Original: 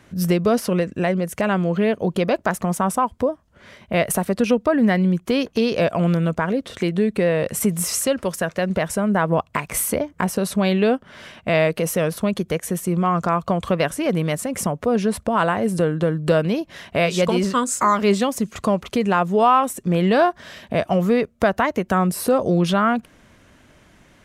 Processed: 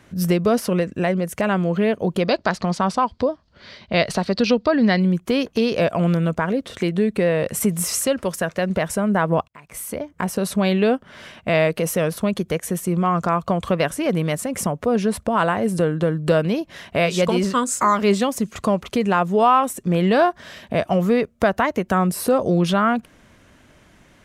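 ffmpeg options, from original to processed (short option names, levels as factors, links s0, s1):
-filter_complex "[0:a]asettb=1/sr,asplit=3[s0][s1][s2];[s0]atrim=end=2.254[s3];[s1]atrim=start=2.25:end=5,asetpts=PTS-STARTPTS,afade=t=in:d=0.004:c=qsin,afade=t=out:st=2.746:d=0.004:c=qsin,lowpass=f=4500:t=q:w=5.4[s4];[s2]atrim=start=4.996[s5];[s3][s4]acrossfade=d=0.004:c1=hsin:c2=qsin[s6];[s6][s5]acrossfade=d=0.004:c1=qsin:c2=hsin,asplit=2[s7][s8];[s7]atrim=end=9.48,asetpts=PTS-STARTPTS,afade=t=out:st=9.476:d=0.004:c=hsin[s9];[s8]atrim=start=9.48,asetpts=PTS-STARTPTS,afade=t=in:d=0.99[s10];[s9][s10]concat=n=2:v=0:a=1"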